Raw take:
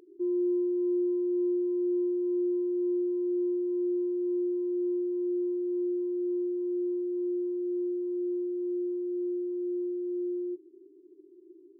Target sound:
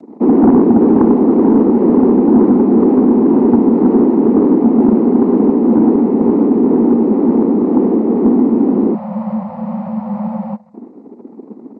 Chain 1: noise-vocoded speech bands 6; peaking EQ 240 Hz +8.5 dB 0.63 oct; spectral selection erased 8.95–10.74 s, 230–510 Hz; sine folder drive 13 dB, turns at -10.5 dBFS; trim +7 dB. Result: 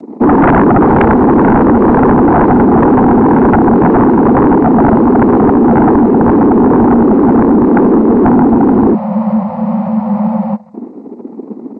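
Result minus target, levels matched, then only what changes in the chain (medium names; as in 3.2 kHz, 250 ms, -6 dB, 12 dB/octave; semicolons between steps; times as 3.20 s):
sine folder: distortion +16 dB
change: sine folder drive 5 dB, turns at -10.5 dBFS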